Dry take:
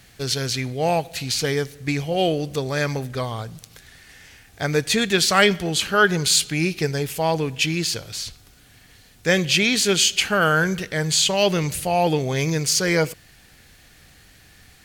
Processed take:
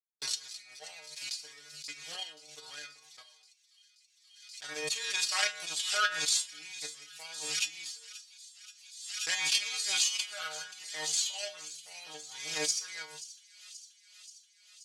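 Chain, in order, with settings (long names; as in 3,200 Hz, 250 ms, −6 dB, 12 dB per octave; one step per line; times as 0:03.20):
peak hold with a decay on every bin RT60 0.36 s
power curve on the samples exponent 2
meter weighting curve ITU-R 468
noise gate −47 dBFS, range −53 dB
low-shelf EQ 100 Hz −9 dB
mains-hum notches 50/100/150 Hz
stiff-string resonator 150 Hz, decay 0.31 s, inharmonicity 0.002
transient designer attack +8 dB, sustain −1 dB
on a send: delay with a high-pass on its return 530 ms, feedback 69%, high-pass 3,500 Hz, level −15 dB
on the sum: background raised ahead of every attack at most 52 dB per second
level −6 dB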